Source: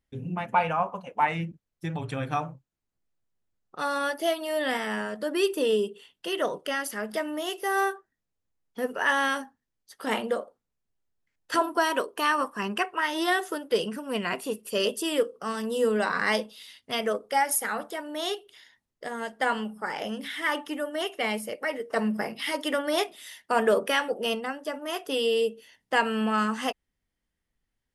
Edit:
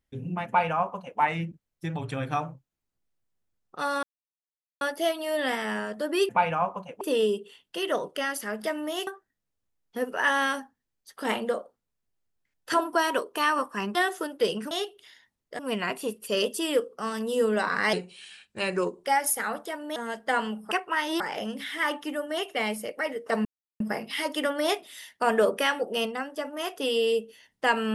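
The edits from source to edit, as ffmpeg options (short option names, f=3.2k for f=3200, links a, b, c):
-filter_complex "[0:a]asplit=14[a][b][c][d][e][f][g][h][i][j][k][l][m][n];[a]atrim=end=4.03,asetpts=PTS-STARTPTS,afade=t=out:st=4.026:d=0.004:c=hsin,apad=pad_dur=0.78[o];[b]atrim=start=4.03:end=5.512,asetpts=PTS-STARTPTS,afade=t=in:d=0.004:c=hsin[p];[c]atrim=start=0.468:end=1.192[q];[d]atrim=start=5.508:end=7.572[r];[e]atrim=start=7.888:end=12.772[s];[f]atrim=start=13.258:end=14.022[t];[g]atrim=start=18.208:end=19.092[u];[h]atrim=start=14.018:end=16.364[v];[i]atrim=start=16.36:end=17.31,asetpts=PTS-STARTPTS,asetrate=37044,aresample=44100[w];[j]atrim=start=17.306:end=18.212[x];[k]atrim=start=19.088:end=19.842[y];[l]atrim=start=12.768:end=13.262[z];[m]atrim=start=19.838:end=22.09,asetpts=PTS-STARTPTS,afade=t=out:st=2.248:d=0.004:c=hsin,apad=pad_dur=0.35[aa];[n]atrim=start=22.09,asetpts=PTS-STARTPTS,afade=t=in:d=0.004:c=hsin[ab];[o][p]concat=n=2:v=0:a=1[ac];[ac][q]acrossfade=d=0.004:c1=hsin:c2=hsin[ad];[ad][r]acrossfade=d=0.004:c1=hsin:c2=hsin[ae];[ae][s]acrossfade=d=0.004:c1=hsin:c2=hsin[af];[af][t]acrossfade=d=0.004:c1=hsin:c2=hsin[ag];[ag][u]acrossfade=d=0.004:c1=hsin:c2=hsin[ah];[ah][v]acrossfade=d=0.004:c1=hsin:c2=hsin[ai];[ai][w]acrossfade=d=0.004:c1=hsin:c2=hsin[aj];[aj][x]acrossfade=d=0.004:c1=hsin:c2=hsin[ak];[ak][y]acrossfade=d=0.004:c1=hsin:c2=hsin[al];[al][z]acrossfade=d=0.004:c1=hsin:c2=hsin[am];[aa][ab]concat=n=2:v=0:a=1[an];[am][an]acrossfade=d=0.004:c1=hsin:c2=hsin"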